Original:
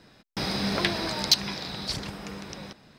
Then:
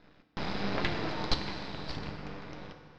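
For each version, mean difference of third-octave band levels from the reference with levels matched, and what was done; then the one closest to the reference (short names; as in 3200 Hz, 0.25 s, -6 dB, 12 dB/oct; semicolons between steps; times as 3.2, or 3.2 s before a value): 6.0 dB: half-wave rectifier; Gaussian blur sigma 2.2 samples; FDN reverb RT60 2.2 s, high-frequency decay 0.75×, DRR 5.5 dB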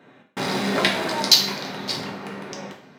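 3.5 dB: Wiener smoothing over 9 samples; HPF 220 Hz 12 dB/oct; bell 13000 Hz +2 dB 0.34 oct; two-slope reverb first 0.46 s, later 2.9 s, from -28 dB, DRR -0.5 dB; gain +4.5 dB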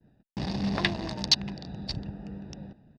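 9.0 dB: Wiener smoothing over 41 samples; LPF 5600 Hz 12 dB/oct; expander -54 dBFS; comb 1.1 ms, depth 41%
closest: second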